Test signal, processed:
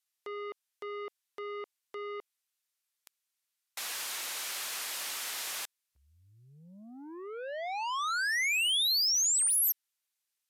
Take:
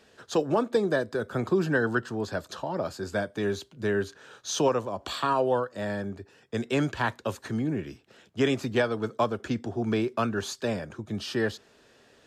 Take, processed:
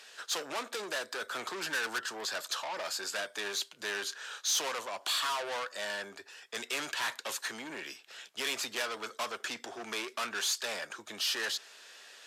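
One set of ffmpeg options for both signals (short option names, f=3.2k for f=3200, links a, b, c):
-filter_complex "[0:a]asplit=2[a][b];[b]highpass=f=720:p=1,volume=26dB,asoftclip=type=tanh:threshold=-12.5dB[c];[a][c]amix=inputs=2:normalize=0,lowpass=f=1.9k:p=1,volume=-6dB,aderivative,volume=3dB" -ar 32000 -c:a libvorbis -b:a 96k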